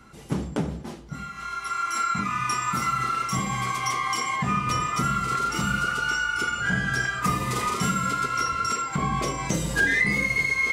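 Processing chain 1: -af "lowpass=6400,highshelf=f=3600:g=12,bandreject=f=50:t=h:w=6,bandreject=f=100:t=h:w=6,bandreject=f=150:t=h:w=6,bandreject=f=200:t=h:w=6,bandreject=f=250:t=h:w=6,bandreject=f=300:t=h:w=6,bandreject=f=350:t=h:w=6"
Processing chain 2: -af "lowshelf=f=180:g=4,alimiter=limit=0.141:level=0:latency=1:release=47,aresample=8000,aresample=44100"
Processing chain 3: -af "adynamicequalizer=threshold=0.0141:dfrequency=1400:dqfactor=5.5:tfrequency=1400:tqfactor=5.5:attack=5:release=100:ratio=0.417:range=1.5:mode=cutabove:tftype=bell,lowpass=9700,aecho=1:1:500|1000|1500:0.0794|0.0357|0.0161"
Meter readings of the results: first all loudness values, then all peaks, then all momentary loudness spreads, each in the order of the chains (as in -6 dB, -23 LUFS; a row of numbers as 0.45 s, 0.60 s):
-23.0 LUFS, -26.5 LUFS, -26.0 LUFS; -9.0 dBFS, -16.5 dBFS, -11.5 dBFS; 11 LU, 6 LU, 9 LU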